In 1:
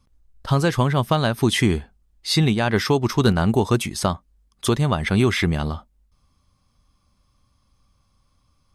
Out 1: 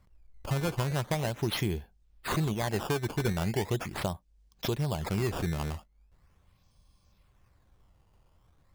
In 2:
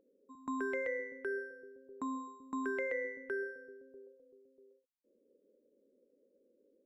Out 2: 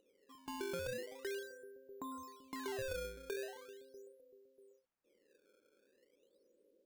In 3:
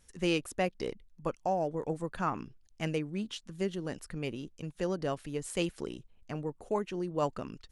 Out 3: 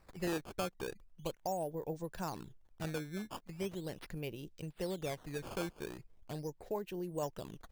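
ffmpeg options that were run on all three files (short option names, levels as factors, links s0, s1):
-af "equalizer=f=250:t=o:w=0.33:g=-10,equalizer=f=1250:t=o:w=0.33:g=-12,equalizer=f=2000:t=o:w=0.33:g=-5,acompressor=threshold=0.00631:ratio=1.5,acrusher=samples=13:mix=1:aa=0.000001:lfo=1:lforange=20.8:lforate=0.4"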